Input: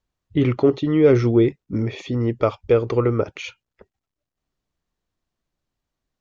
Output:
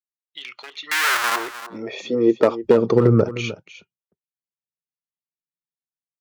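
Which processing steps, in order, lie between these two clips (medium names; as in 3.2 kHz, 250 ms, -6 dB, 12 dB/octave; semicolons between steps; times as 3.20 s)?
one-sided wavefolder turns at -12.5 dBFS; spectral noise reduction 8 dB; expander -46 dBFS; bass shelf 400 Hz +8 dB; in parallel at +3 dB: peak limiter -8 dBFS, peak gain reduction 7.5 dB; on the sum: compression, threshold -8 dBFS, peak gain reduction 7.5 dB; 0.91–1.36 s: Schmitt trigger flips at -24.5 dBFS; high-pass sweep 3.9 kHz -> 150 Hz, 0.26–3.09 s; on a send: delay 306 ms -14 dB; on the sum: trim -4 dB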